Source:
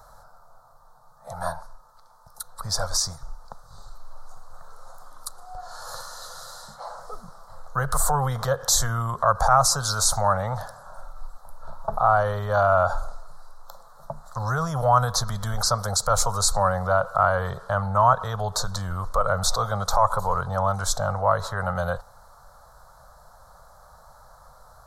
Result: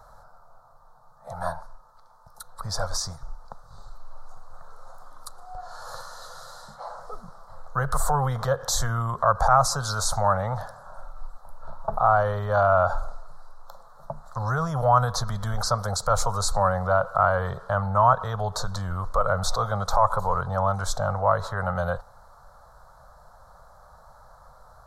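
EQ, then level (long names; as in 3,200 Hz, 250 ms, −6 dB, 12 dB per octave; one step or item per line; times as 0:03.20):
high-shelf EQ 4,000 Hz −8.5 dB
0.0 dB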